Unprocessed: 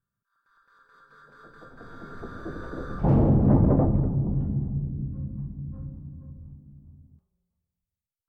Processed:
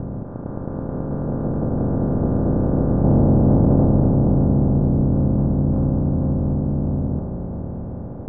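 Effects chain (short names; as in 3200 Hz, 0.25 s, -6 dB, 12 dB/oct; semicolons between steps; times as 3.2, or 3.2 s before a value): per-bin compression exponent 0.2; Bessel low-pass 750 Hz, order 2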